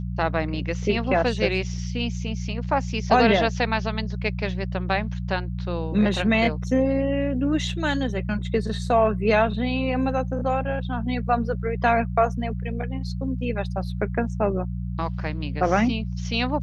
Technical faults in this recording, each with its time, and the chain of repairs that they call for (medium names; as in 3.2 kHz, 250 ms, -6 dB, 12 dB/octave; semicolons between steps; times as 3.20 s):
hum 60 Hz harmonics 3 -29 dBFS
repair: de-hum 60 Hz, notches 3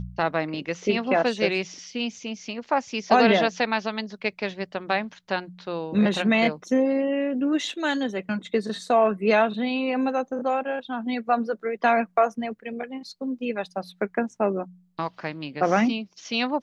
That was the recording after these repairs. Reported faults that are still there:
nothing left